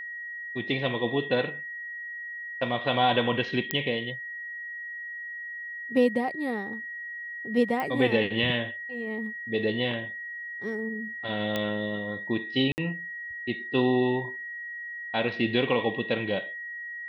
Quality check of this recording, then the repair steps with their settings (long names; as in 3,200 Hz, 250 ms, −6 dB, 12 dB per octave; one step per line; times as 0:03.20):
whistle 1,900 Hz −35 dBFS
0:03.71: click −8 dBFS
0:07.80: click −18 dBFS
0:11.56: click −14 dBFS
0:12.72–0:12.78: drop-out 59 ms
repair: click removal
notch filter 1,900 Hz, Q 30
repair the gap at 0:12.72, 59 ms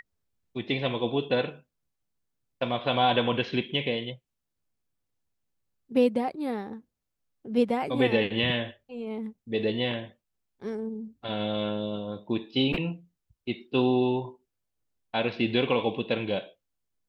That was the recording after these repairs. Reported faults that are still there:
none of them is left